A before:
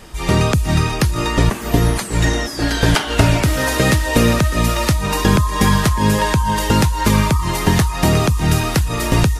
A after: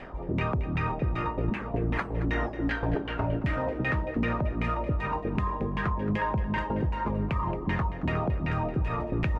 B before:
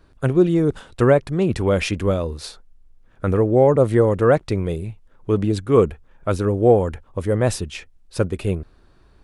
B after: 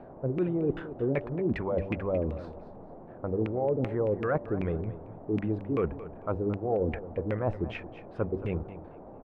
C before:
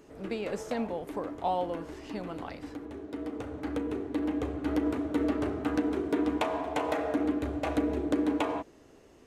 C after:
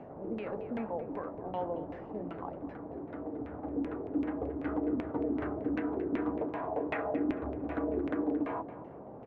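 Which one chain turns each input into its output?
LFO low-pass saw down 2.6 Hz 230–2400 Hz; dynamic bell 2.5 kHz, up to +5 dB, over -42 dBFS, Q 2.6; reverse; compression 6:1, threshold -20 dBFS; reverse; de-hum 97.47 Hz, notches 6; band noise 86–740 Hz -42 dBFS; on a send: feedback delay 224 ms, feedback 25%, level -14 dB; on the sum: trim -5.5 dB

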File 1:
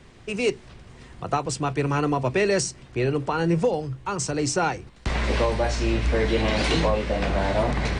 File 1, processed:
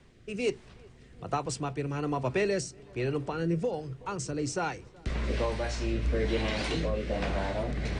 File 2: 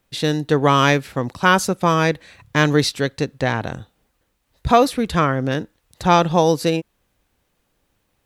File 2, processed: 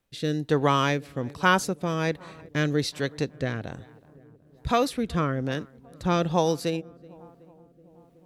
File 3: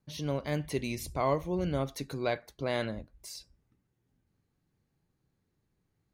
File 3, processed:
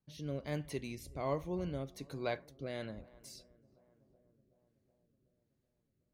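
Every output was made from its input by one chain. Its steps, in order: filtered feedback delay 374 ms, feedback 74%, low-pass 1.4 kHz, level -24 dB; rotary cabinet horn 1.2 Hz; trim -5.5 dB

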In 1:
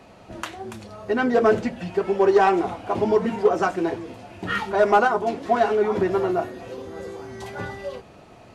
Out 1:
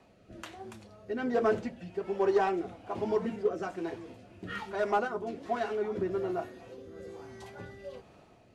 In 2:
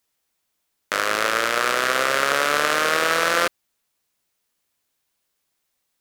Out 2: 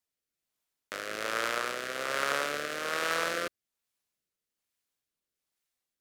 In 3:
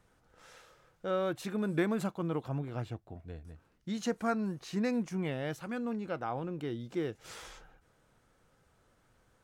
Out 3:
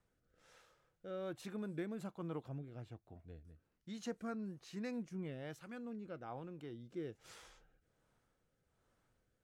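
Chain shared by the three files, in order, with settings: rotary cabinet horn 1.2 Hz; trim -9 dB

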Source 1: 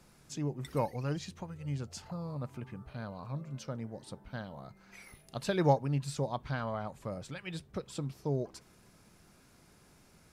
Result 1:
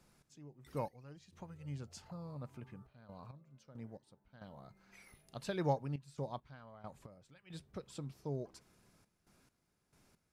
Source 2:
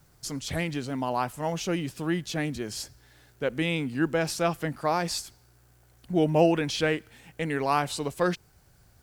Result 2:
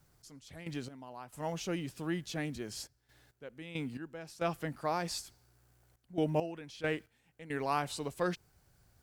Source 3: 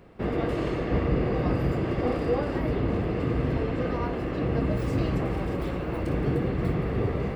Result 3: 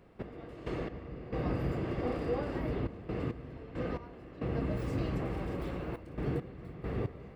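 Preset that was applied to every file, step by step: trance gate "x..x..xxxxxxx." 68 bpm -12 dB; trim -7.5 dB

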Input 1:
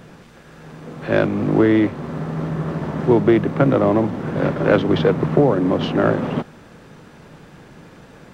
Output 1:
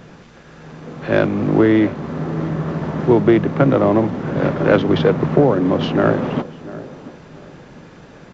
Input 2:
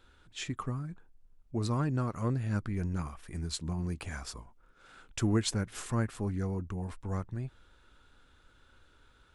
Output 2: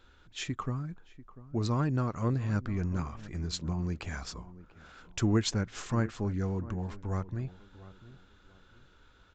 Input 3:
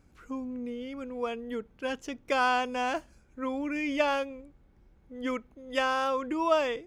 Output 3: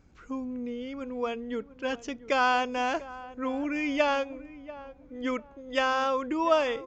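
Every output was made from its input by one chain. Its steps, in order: tape echo 692 ms, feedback 36%, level -15 dB, low-pass 1.1 kHz; resampled via 16 kHz; trim +1.5 dB

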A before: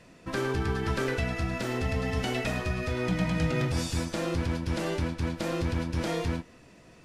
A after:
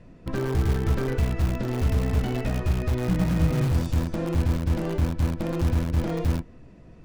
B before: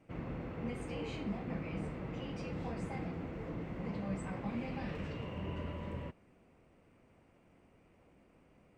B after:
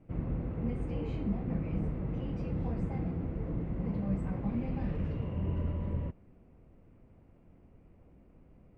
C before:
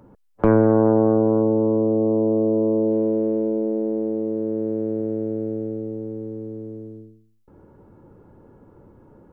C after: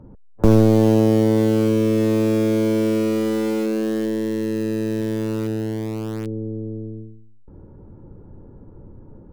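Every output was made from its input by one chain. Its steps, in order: tilt EQ -3.5 dB/octave; in parallel at -11 dB: integer overflow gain 16.5 dB; on the sum: trim -4.5 dB

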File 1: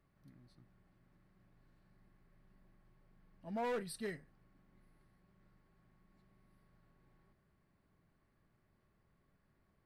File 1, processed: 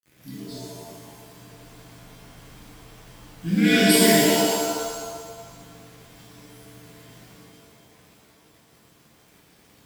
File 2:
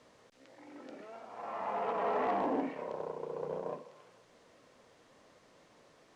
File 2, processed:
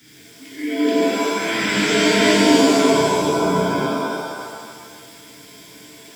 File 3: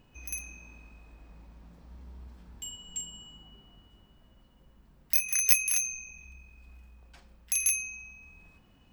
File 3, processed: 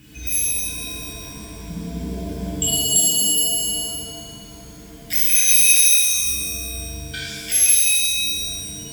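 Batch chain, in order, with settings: rippled EQ curve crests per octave 1.7, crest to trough 9 dB; saturation -17.5 dBFS; spectral noise reduction 13 dB; inverse Chebyshev band-stop 520–1100 Hz, stop band 40 dB; treble shelf 3.4 kHz +3.5 dB; compression 2.5:1, threshold -50 dBFS; de-hum 400.9 Hz, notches 12; companded quantiser 8-bit; high-pass 71 Hz 12 dB/octave; loudness maximiser +34.5 dB; pitch-shifted reverb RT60 1.6 s, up +7 st, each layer -2 dB, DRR -7 dB; trim -10 dB

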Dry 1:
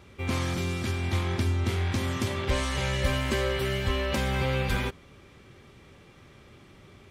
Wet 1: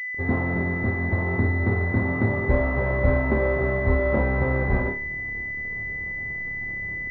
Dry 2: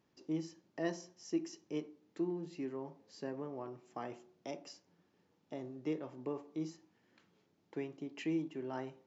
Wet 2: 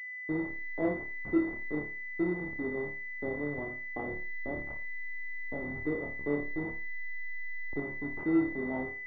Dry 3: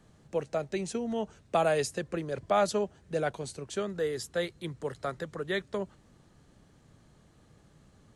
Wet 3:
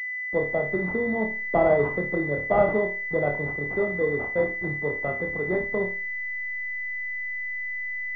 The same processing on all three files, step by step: send-on-delta sampling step -41.5 dBFS; flutter echo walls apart 4.7 m, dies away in 0.36 s; class-D stage that switches slowly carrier 2 kHz; trim +5.5 dB

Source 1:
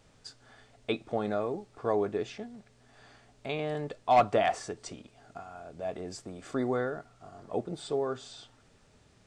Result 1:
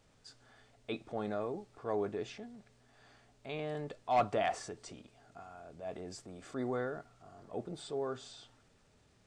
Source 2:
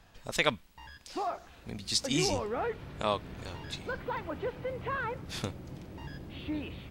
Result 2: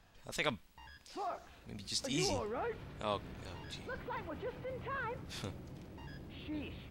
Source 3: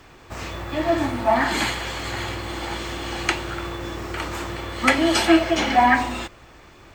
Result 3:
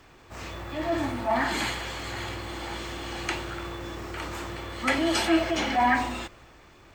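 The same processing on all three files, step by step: transient shaper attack -4 dB, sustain +2 dB; trim -5.5 dB

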